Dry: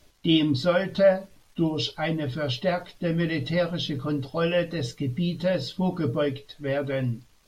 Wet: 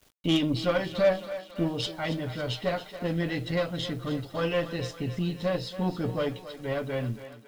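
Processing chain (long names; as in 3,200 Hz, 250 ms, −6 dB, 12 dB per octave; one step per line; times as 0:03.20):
harmonic generator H 6 −21 dB, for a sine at −9 dBFS
bit reduction 9 bits
feedback echo with a high-pass in the loop 277 ms, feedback 61%, high-pass 340 Hz, level −12 dB
level −4 dB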